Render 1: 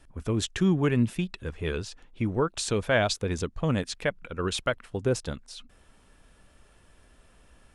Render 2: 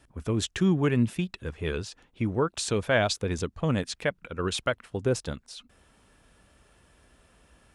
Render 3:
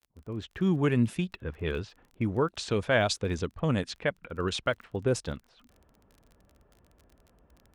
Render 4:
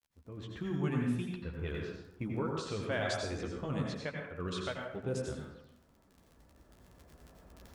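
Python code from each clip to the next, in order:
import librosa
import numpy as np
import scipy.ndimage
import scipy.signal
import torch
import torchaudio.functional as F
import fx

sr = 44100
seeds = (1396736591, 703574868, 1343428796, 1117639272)

y1 = scipy.signal.sosfilt(scipy.signal.butter(2, 47.0, 'highpass', fs=sr, output='sos'), x)
y2 = fx.fade_in_head(y1, sr, length_s=0.84)
y2 = fx.env_lowpass(y2, sr, base_hz=880.0, full_db=-22.0)
y2 = fx.dmg_crackle(y2, sr, seeds[0], per_s=28.0, level_db=-43.0)
y2 = y2 * librosa.db_to_amplitude(-1.0)
y3 = fx.recorder_agc(y2, sr, target_db=-17.0, rise_db_per_s=6.3, max_gain_db=30)
y3 = fx.chorus_voices(y3, sr, voices=2, hz=0.7, base_ms=13, depth_ms=2.4, mix_pct=35)
y3 = fx.rev_plate(y3, sr, seeds[1], rt60_s=0.82, hf_ratio=0.55, predelay_ms=75, drr_db=0.0)
y3 = y3 * librosa.db_to_amplitude(-8.5)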